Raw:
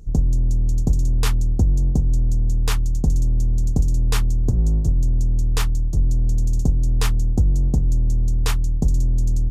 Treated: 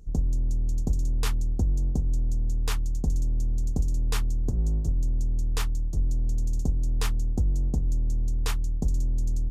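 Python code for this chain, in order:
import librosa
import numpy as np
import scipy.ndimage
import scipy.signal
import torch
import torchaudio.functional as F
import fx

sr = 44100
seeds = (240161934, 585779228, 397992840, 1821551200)

y = fx.peak_eq(x, sr, hz=120.0, db=-4.5, octaves=0.77)
y = y * librosa.db_to_amplitude(-6.5)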